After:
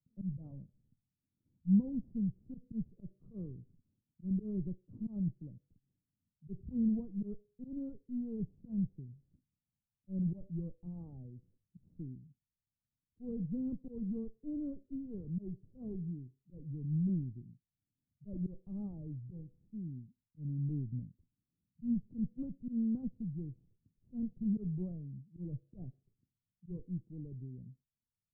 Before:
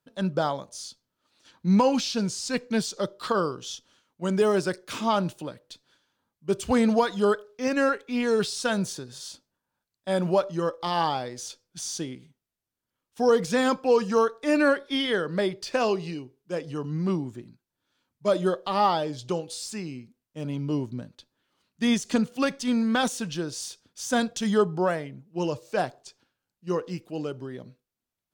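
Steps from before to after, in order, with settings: Chebyshev shaper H 8 -22 dB, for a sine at -10 dBFS; slow attack 101 ms; four-pole ladder low-pass 220 Hz, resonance 20%; trim +2.5 dB

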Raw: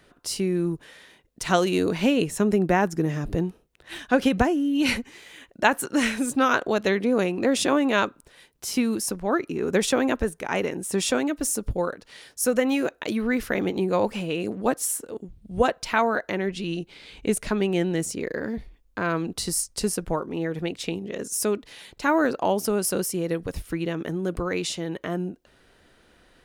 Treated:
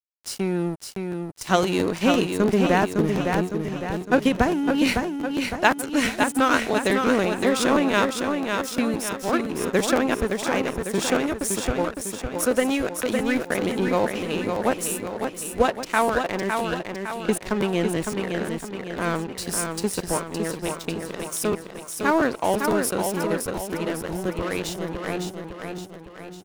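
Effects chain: crossover distortion -33.5 dBFS; feedback delay 558 ms, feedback 50%, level -5 dB; crackling interface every 0.17 s, samples 512, repeat, from 0.60 s; trim +2 dB

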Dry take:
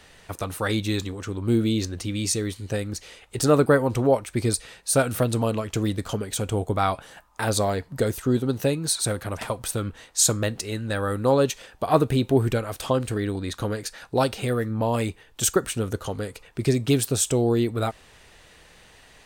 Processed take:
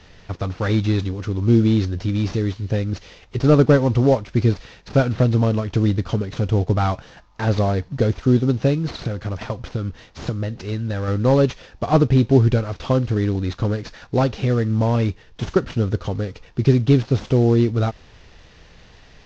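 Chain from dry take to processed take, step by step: CVSD coder 32 kbps; bass shelf 300 Hz +10.5 dB; 8.90–11.08 s: compression 10:1, threshold -20 dBFS, peak gain reduction 8 dB

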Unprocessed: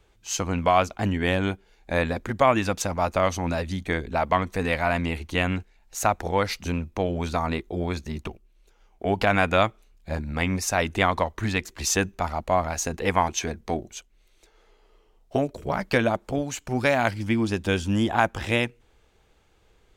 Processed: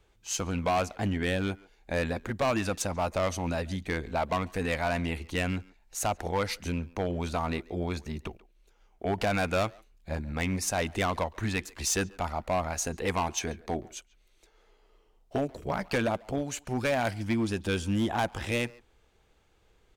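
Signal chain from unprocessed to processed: dynamic bell 9.4 kHz, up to +5 dB, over -53 dBFS, Q 2.3; hard clipper -18 dBFS, distortion -11 dB; speakerphone echo 140 ms, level -19 dB; trim -4 dB

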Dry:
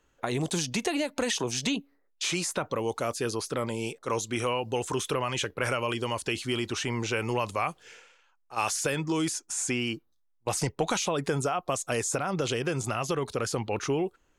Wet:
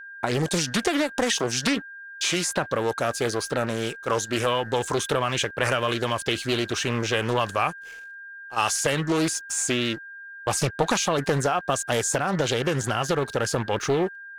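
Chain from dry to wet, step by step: crossover distortion -52.5 dBFS; whistle 1.6 kHz -44 dBFS; loudspeaker Doppler distortion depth 0.54 ms; trim +5.5 dB

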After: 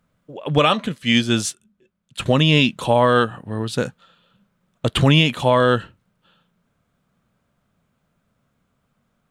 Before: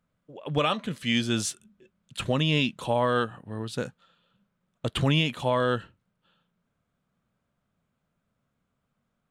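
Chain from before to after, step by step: 0.88–2.26 s: upward expansion 1.5:1, over -45 dBFS; trim +9 dB

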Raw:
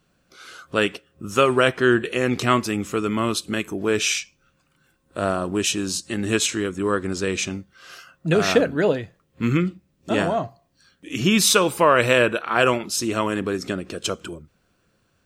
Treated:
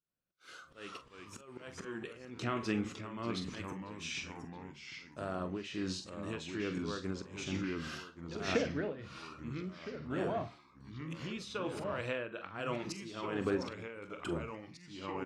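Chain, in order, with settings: compression 10:1, threshold -30 dBFS, peak gain reduction 18.5 dB; slow attack 329 ms; treble shelf 10 kHz -6 dB; doubling 43 ms -11 dB; low-pass that closes with the level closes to 3 kHz, closed at -29.5 dBFS; flange 0.16 Hz, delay 6.3 ms, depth 2.7 ms, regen -84%; expander -51 dBFS; ever faster or slower copies 265 ms, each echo -2 st, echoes 3, each echo -6 dB; tremolo triangle 1.2 Hz, depth 75%; trim +6.5 dB

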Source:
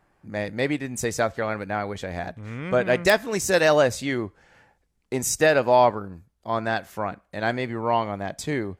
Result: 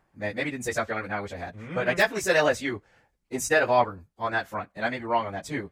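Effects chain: dynamic bell 1.8 kHz, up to +6 dB, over -35 dBFS, Q 0.75; plain phase-vocoder stretch 0.65×; trim -1.5 dB

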